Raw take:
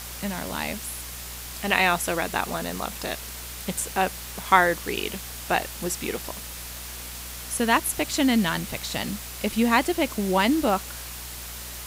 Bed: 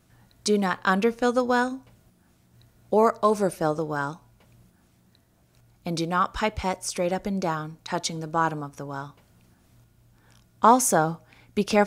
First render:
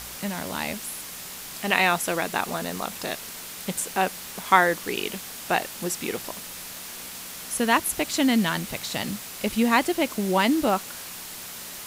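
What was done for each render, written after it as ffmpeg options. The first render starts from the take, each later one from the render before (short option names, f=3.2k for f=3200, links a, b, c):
-af "bandreject=f=60:t=h:w=4,bandreject=f=120:t=h:w=4"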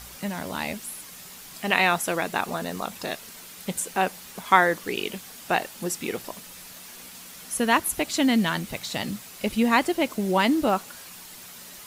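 -af "afftdn=nr=7:nf=-39"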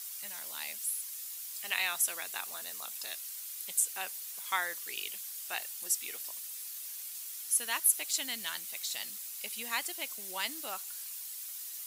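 -af "highpass=f=160:p=1,aderivative"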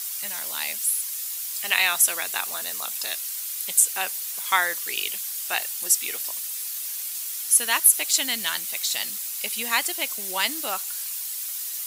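-af "volume=11dB,alimiter=limit=-2dB:level=0:latency=1"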